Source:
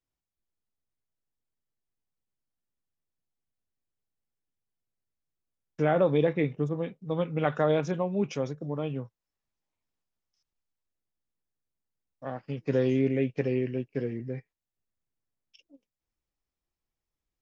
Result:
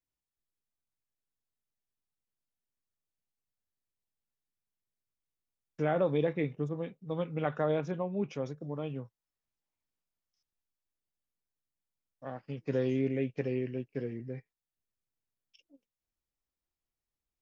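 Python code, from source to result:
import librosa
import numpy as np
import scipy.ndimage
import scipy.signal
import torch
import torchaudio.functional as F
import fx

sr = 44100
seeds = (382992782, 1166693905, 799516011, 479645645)

y = fx.high_shelf(x, sr, hz=5200.0, db=-11.5, at=(7.42, 8.46))
y = y * 10.0 ** (-5.0 / 20.0)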